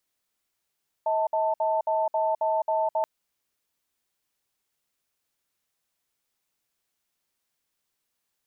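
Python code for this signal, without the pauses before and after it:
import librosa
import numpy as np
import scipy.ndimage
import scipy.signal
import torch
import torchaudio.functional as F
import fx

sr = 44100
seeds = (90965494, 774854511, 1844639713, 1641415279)

y = fx.cadence(sr, length_s=1.98, low_hz=638.0, high_hz=887.0, on_s=0.21, off_s=0.06, level_db=-24.5)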